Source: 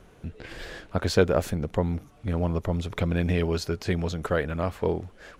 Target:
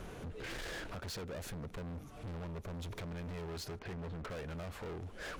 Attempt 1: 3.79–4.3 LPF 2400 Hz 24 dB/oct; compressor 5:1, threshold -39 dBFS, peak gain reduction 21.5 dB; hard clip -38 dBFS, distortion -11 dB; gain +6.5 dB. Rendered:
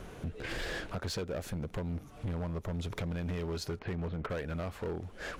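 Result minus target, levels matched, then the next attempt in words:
hard clip: distortion -7 dB
3.79–4.3 LPF 2400 Hz 24 dB/oct; compressor 5:1, threshold -39 dBFS, peak gain reduction 21.5 dB; hard clip -47.5 dBFS, distortion -4 dB; gain +6.5 dB

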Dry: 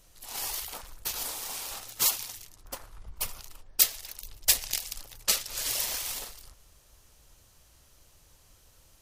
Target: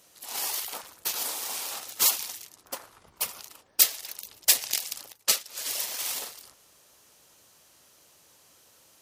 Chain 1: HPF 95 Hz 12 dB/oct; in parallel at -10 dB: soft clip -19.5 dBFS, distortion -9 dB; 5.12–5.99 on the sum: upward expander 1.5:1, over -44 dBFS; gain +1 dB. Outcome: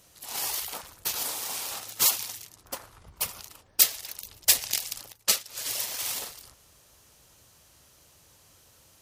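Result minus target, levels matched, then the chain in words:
125 Hz band +9.0 dB
HPF 220 Hz 12 dB/oct; in parallel at -10 dB: soft clip -19.5 dBFS, distortion -9 dB; 5.12–5.99 on the sum: upward expander 1.5:1, over -44 dBFS; gain +1 dB

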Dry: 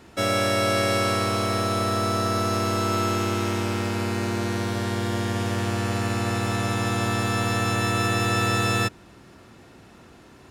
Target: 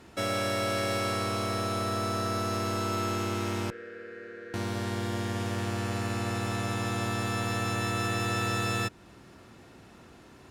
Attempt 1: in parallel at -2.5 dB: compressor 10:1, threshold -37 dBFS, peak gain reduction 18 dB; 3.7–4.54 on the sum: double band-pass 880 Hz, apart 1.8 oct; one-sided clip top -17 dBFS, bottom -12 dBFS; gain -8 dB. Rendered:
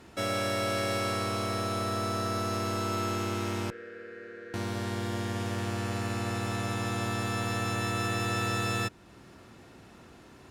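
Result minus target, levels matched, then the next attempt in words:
compressor: peak gain reduction +6 dB
in parallel at -2.5 dB: compressor 10:1, threshold -30.5 dBFS, peak gain reduction 12 dB; 3.7–4.54 on the sum: double band-pass 880 Hz, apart 1.8 oct; one-sided clip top -17 dBFS, bottom -12 dBFS; gain -8 dB

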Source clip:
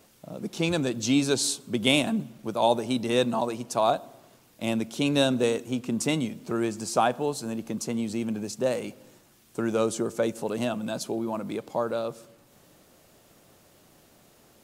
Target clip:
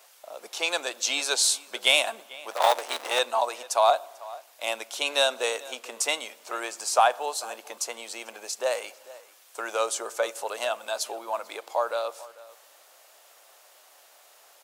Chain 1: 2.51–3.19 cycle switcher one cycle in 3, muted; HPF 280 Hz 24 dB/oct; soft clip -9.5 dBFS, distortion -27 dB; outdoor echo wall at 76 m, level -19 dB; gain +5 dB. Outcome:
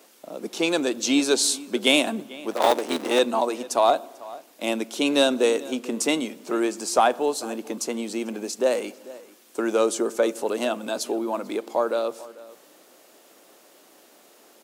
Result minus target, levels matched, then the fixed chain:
250 Hz band +19.5 dB
2.51–3.19 cycle switcher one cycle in 3, muted; HPF 620 Hz 24 dB/oct; soft clip -9.5 dBFS, distortion -27 dB; outdoor echo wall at 76 m, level -19 dB; gain +5 dB

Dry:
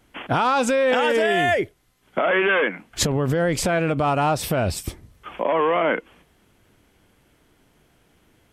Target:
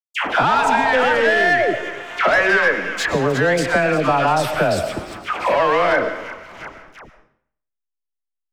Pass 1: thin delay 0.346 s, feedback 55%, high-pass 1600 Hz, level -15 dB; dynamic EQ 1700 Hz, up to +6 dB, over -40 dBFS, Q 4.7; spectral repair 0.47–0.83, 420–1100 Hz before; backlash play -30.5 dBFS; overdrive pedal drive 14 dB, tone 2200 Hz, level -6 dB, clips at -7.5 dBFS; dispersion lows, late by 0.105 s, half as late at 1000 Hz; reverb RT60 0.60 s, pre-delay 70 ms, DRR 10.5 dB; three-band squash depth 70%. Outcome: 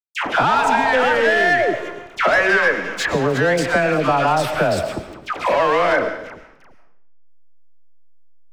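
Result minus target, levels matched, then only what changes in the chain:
backlash: distortion +7 dB
change: backlash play -38 dBFS

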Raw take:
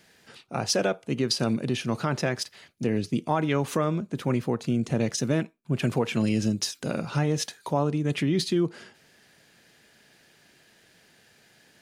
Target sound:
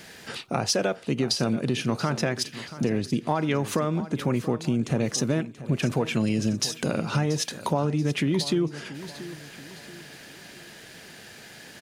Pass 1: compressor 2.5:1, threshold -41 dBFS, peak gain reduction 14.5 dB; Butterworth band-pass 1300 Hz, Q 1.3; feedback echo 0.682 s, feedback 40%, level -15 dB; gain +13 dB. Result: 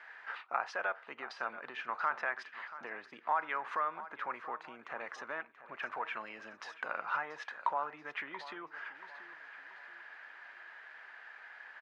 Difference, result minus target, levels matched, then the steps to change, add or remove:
1000 Hz band +10.5 dB
remove: Butterworth band-pass 1300 Hz, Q 1.3

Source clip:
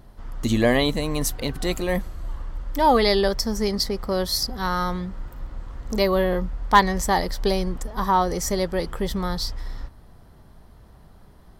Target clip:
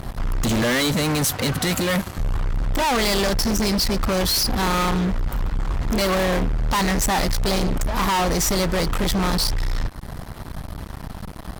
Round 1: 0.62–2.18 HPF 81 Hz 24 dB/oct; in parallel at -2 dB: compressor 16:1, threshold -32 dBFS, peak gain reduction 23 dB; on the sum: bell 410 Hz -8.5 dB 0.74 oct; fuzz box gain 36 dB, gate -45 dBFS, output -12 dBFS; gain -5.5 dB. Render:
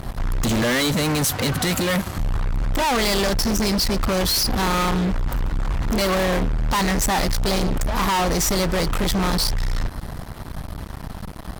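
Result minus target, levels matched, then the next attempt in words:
compressor: peak gain reduction -10.5 dB
0.62–2.18 HPF 81 Hz 24 dB/oct; in parallel at -2 dB: compressor 16:1, threshold -43 dBFS, peak gain reduction 33.5 dB; on the sum: bell 410 Hz -8.5 dB 0.74 oct; fuzz box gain 36 dB, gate -45 dBFS, output -12 dBFS; gain -5.5 dB

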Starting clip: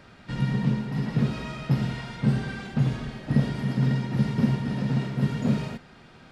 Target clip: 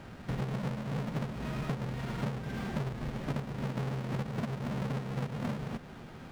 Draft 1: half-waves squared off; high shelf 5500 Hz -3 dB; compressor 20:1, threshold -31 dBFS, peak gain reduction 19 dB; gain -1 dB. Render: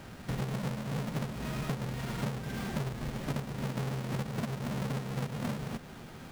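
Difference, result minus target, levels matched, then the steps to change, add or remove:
8000 Hz band +7.0 dB
change: high shelf 5500 Hz -14.5 dB

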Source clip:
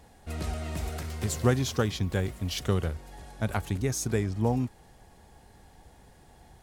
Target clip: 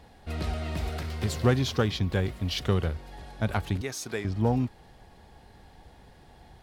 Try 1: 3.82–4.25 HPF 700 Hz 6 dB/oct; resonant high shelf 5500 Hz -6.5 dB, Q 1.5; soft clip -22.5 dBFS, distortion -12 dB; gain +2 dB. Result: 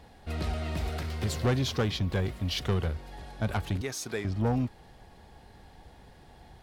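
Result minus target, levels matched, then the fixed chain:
soft clip: distortion +13 dB
3.82–4.25 HPF 700 Hz 6 dB/oct; resonant high shelf 5500 Hz -6.5 dB, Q 1.5; soft clip -13 dBFS, distortion -24 dB; gain +2 dB

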